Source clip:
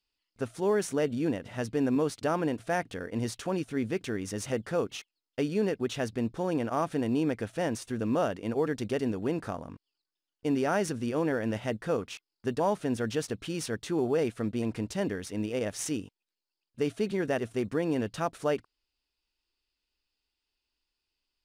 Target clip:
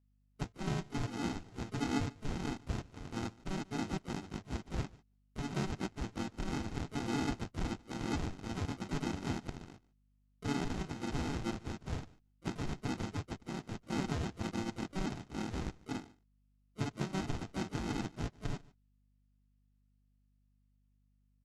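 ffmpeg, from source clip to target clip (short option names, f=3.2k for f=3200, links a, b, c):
-filter_complex "[0:a]lowpass=2.9k,afwtdn=0.0112,acrossover=split=110[a][b];[a]acompressor=threshold=-59dB:ratio=6[c];[c][b]amix=inputs=2:normalize=0,alimiter=limit=-20dB:level=0:latency=1:release=274,aresample=16000,acrusher=samples=28:mix=1:aa=0.000001,aresample=44100,asplit=4[d][e][f][g];[e]asetrate=35002,aresample=44100,atempo=1.25992,volume=-11dB[h];[f]asetrate=37084,aresample=44100,atempo=1.18921,volume=-6dB[i];[g]asetrate=66075,aresample=44100,atempo=0.66742,volume=-10dB[j];[d][h][i][j]amix=inputs=4:normalize=0,aecho=1:1:146:0.0708,aeval=exprs='val(0)+0.000708*(sin(2*PI*50*n/s)+sin(2*PI*2*50*n/s)/2+sin(2*PI*3*50*n/s)/3+sin(2*PI*4*50*n/s)/4+sin(2*PI*5*50*n/s)/5)':c=same,volume=-8dB" -ar 48000 -c:a libopus -b:a 48k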